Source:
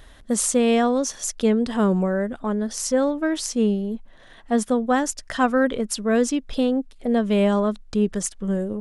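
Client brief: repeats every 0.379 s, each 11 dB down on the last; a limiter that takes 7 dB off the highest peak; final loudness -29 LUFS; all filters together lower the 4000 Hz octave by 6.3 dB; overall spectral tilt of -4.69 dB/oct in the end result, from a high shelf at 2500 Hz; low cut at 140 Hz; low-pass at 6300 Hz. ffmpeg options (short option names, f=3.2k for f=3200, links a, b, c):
-af "highpass=140,lowpass=6.3k,highshelf=f=2.5k:g=-4.5,equalizer=f=4k:t=o:g=-3.5,alimiter=limit=-14.5dB:level=0:latency=1,aecho=1:1:379|758|1137:0.282|0.0789|0.0221,volume=-4.5dB"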